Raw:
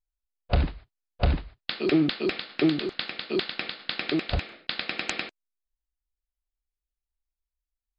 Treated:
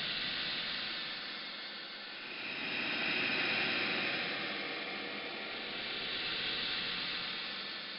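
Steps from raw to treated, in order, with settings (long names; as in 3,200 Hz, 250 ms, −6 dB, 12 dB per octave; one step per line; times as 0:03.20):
extreme stretch with random phases 32×, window 0.10 s, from 0:03.49
level −3.5 dB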